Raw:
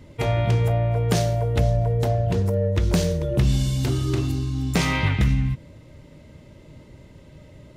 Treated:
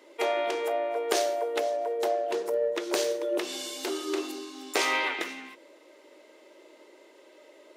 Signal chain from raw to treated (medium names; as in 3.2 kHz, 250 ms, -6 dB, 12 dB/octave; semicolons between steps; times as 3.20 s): elliptic high-pass 340 Hz, stop band 60 dB